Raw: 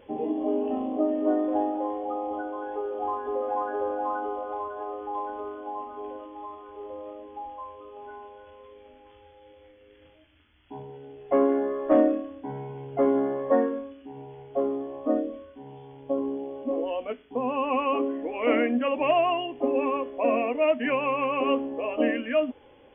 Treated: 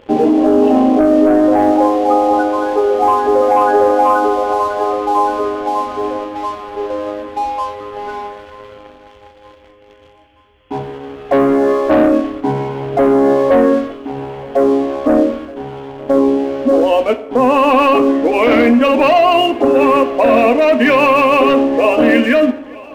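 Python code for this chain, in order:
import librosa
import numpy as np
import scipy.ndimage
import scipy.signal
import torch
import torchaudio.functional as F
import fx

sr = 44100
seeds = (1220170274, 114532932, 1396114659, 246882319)

p1 = fx.leveller(x, sr, passes=2)
p2 = fx.over_compress(p1, sr, threshold_db=-21.0, ratio=-1.0)
p3 = p1 + (p2 * librosa.db_to_amplitude(2.5))
p4 = fx.echo_feedback(p3, sr, ms=926, feedback_pct=55, wet_db=-23)
p5 = fx.rev_plate(p4, sr, seeds[0], rt60_s=1.0, hf_ratio=0.6, predelay_ms=0, drr_db=11.5)
y = p5 * librosa.db_to_amplitude(2.5)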